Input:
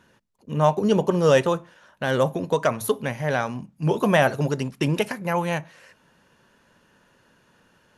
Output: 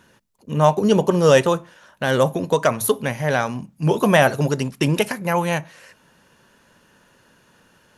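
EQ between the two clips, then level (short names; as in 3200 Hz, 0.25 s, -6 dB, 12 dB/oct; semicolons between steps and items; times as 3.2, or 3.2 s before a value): high shelf 5800 Hz +6 dB; +3.5 dB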